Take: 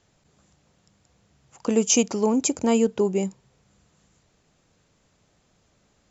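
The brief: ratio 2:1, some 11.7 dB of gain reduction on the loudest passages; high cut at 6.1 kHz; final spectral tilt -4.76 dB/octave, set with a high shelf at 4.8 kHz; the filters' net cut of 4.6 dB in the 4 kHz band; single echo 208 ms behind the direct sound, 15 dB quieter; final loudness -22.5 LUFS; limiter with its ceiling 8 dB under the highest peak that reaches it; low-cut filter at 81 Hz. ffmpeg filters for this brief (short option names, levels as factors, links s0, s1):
-af "highpass=81,lowpass=6100,equalizer=f=4000:t=o:g=-9,highshelf=f=4800:g=5,acompressor=threshold=0.0126:ratio=2,alimiter=level_in=1.58:limit=0.0631:level=0:latency=1,volume=0.631,aecho=1:1:208:0.178,volume=5.96"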